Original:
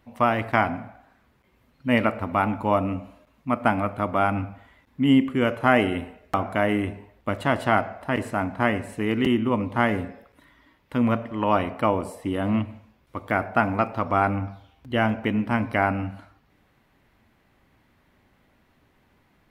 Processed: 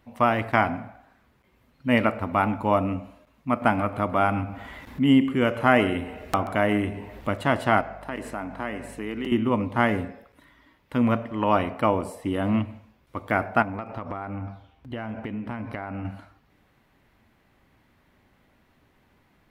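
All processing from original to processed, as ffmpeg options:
ffmpeg -i in.wav -filter_complex "[0:a]asettb=1/sr,asplit=3[link_01][link_02][link_03];[link_01]atrim=end=3.624[link_04];[link_02]atrim=start=3.62:end=7.3,asetpts=PTS-STARTPTS,afade=type=in:duration=0.004:curve=qsin,afade=type=out:start_time=3.676:duration=0.004:curve=qsin,acompressor=mode=upward:threshold=-26dB:ratio=2.5:attack=3.2:release=140:knee=2.83:detection=peak,aecho=1:1:134:0.141,atrim=end_sample=162288[link_05];[link_03]atrim=start=7.296[link_06];[link_04][link_05]acrossfade=duration=0.004:curve1=hsin:curve2=qsin[link_07];[link_07][link_06]acrossfade=duration=0.004:curve1=qsin:curve2=hsin,asettb=1/sr,asplit=3[link_08][link_09][link_10];[link_08]atrim=end=7.814[link_11];[link_09]atrim=start=7.81:end=9.32,asetpts=PTS-STARTPTS,afade=type=in:duration=0.004:curve=qsin,afade=type=out:start_time=1.506:duration=0.004:curve=qsin,highpass=190,acompressor=threshold=-32dB:ratio=2:attack=3.2:release=140:knee=1:detection=peak,aeval=exprs='val(0)+0.00447*(sin(2*PI*50*n/s)+sin(2*PI*2*50*n/s)/2+sin(2*PI*3*50*n/s)/3+sin(2*PI*4*50*n/s)/4+sin(2*PI*5*50*n/s)/5)':channel_layout=same[link_12];[link_10]atrim=start=9.316[link_13];[link_11][link_12]acrossfade=duration=0.004:curve1=hsin:curve2=qsin[link_14];[link_14][link_13]acrossfade=duration=0.004:curve1=qsin:curve2=hsin,asettb=1/sr,asplit=3[link_15][link_16][link_17];[link_15]atrim=end=13.624[link_18];[link_16]atrim=start=13.62:end=16.05,asetpts=PTS-STARTPTS,afade=type=in:duration=0.004:curve=qsin,afade=type=out:start_time=2.426:duration=0.004:curve=qsin,highshelf=frequency=3600:gain=-7.5,acompressor=threshold=-28dB:ratio=12:attack=3.2:release=140:knee=1:detection=peak[link_19];[link_17]atrim=start=16.046[link_20];[link_18][link_19]acrossfade=duration=0.004:curve1=hsin:curve2=qsin[link_21];[link_21][link_20]acrossfade=duration=0.004:curve1=qsin:curve2=hsin" out.wav

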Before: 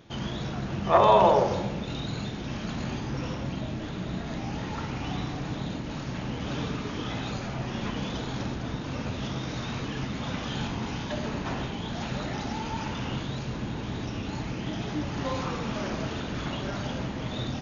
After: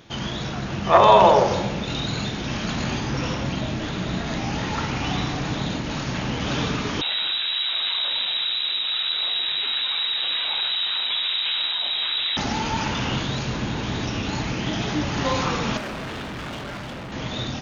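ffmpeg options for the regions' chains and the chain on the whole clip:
ffmpeg -i in.wav -filter_complex "[0:a]asettb=1/sr,asplit=3[link_01][link_02][link_03];[link_01]atrim=end=7.014[link_04];[link_02]atrim=start=7.01:end=12.37,asetpts=PTS-STARTPTS,afade=type=in:duration=0.004:curve=qsin,afade=type=out:start_time=5.356:duration=0.004:curve=qsin,volume=33dB,asoftclip=hard,volume=-33dB,lowpass=frequency=3400:width_type=q:width=0.5098,lowpass=frequency=3400:width_type=q:width=0.6013,lowpass=frequency=3400:width_type=q:width=0.9,lowpass=frequency=3400:width_type=q:width=2.563,afreqshift=-4000[link_05];[link_03]atrim=start=12.366[link_06];[link_04][link_05]acrossfade=duration=0.004:curve1=hsin:curve2=qsin[link_07];[link_07][link_06]acrossfade=duration=0.004:curve1=qsin:curve2=hsin,asettb=1/sr,asplit=3[link_08][link_09][link_10];[link_08]atrim=end=15.774[link_11];[link_09]atrim=start=15.77:end=17.12,asetpts=PTS-STARTPTS,afade=type=in:duration=0.004:curve=qsin,afade=type=out:start_time=1.346:duration=0.004:curve=qsin,bass=frequency=250:gain=0,treble=frequency=4000:gain=-13,asoftclip=type=hard:threshold=-36.5dB[link_12];[link_10]atrim=start=17.116[link_13];[link_11][link_12]acrossfade=duration=0.004:curve1=hsin:curve2=qsin[link_14];[link_14][link_13]acrossfade=duration=0.004:curve1=qsin:curve2=hsin,tiltshelf=frequency=970:gain=-3,dynaudnorm=framelen=350:gausssize=9:maxgain=3dB,volume=5.5dB" out.wav

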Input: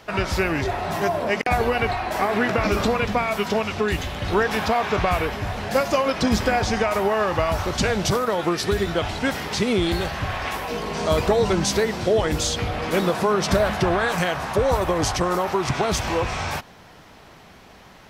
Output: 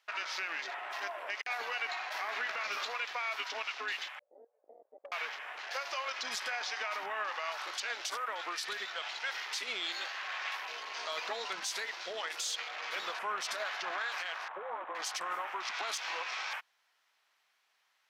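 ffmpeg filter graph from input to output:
ffmpeg -i in.wav -filter_complex "[0:a]asettb=1/sr,asplit=3[link_01][link_02][link_03];[link_01]atrim=end=1.184[link_04];[link_02]atrim=start=1.18:end=3.22,asetpts=PTS-STARTPTS,afade=type=in:duration=0.004:curve=qsin,afade=type=out:start_time=2.036:duration=0.004:curve=qsin,highpass=frequency=180:width=0.5412,highpass=frequency=180:width=1.3066,highshelf=frequency=9500:gain=7[link_05];[link_03]atrim=start=3.216[link_06];[link_04][link_05]acrossfade=duration=0.004:curve1=hsin:curve2=qsin[link_07];[link_07][link_06]acrossfade=duration=0.004:curve1=qsin:curve2=hsin,asettb=1/sr,asplit=3[link_08][link_09][link_10];[link_08]atrim=end=4.194[link_11];[link_09]atrim=start=4.19:end=5.12,asetpts=PTS-STARTPTS,afade=type=in:duration=0.004:curve=qsin,afade=type=out:start_time=0.926:duration=0.004:curve=qsin,asuperpass=centerf=530:order=4:qfactor=4.5,aeval=exprs='clip(val(0),-1,0.0891)':channel_layout=same[link_12];[link_10]atrim=start=5.116[link_13];[link_11][link_12]acrossfade=duration=0.004:curve1=hsin:curve2=qsin[link_14];[link_14][link_13]acrossfade=duration=0.004:curve1=qsin:curve2=hsin,asettb=1/sr,asplit=3[link_15][link_16][link_17];[link_15]atrim=end=14.484[link_18];[link_16]atrim=start=14.48:end=14.95,asetpts=PTS-STARTPTS,afade=type=in:duration=0.004:curve=qsin,afade=type=out:start_time=0.466:duration=0.004:curve=qsin,afreqshift=-23,lowpass=1300[link_19];[link_17]atrim=start=14.946[link_20];[link_18][link_19]acrossfade=duration=0.004:curve1=hsin:curve2=qsin[link_21];[link_21][link_20]acrossfade=duration=0.004:curve1=qsin:curve2=hsin,highpass=1400,afwtdn=0.0112,alimiter=limit=-20.5dB:level=0:latency=1:release=65,volume=-5.5dB" out.wav

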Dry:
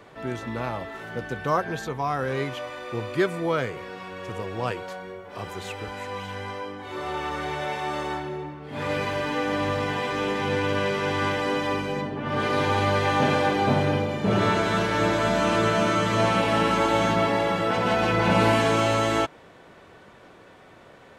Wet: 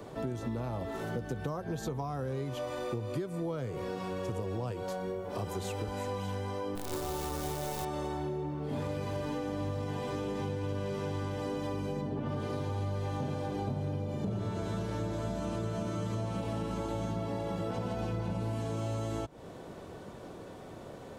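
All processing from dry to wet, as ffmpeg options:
ffmpeg -i in.wav -filter_complex "[0:a]asettb=1/sr,asplit=3[link_01][link_02][link_03];[link_01]atrim=end=6.754[link_04];[link_02]atrim=start=6.75:end=7.85,asetpts=PTS-STARTPTS,afade=type=in:duration=0.004:curve=qsin,afade=type=out:start_time=1.096:duration=0.004:curve=qsin,lowpass=11000,acrusher=bits=6:dc=4:mix=0:aa=0.000001[link_05];[link_03]atrim=start=7.846[link_06];[link_04][link_05]acrossfade=duration=0.004:curve1=hsin:curve2=qsin[link_07];[link_07][link_06]acrossfade=duration=0.004:curve1=qsin:curve2=hsin,acrossover=split=130[link_08][link_09];[link_09]acompressor=threshold=-33dB:ratio=2.5[link_10];[link_08][link_10]amix=inputs=2:normalize=0,equalizer=frequency=2000:width_type=o:width=2.1:gain=-13.5,acompressor=threshold=-39dB:ratio=6,volume=7dB" out.wav

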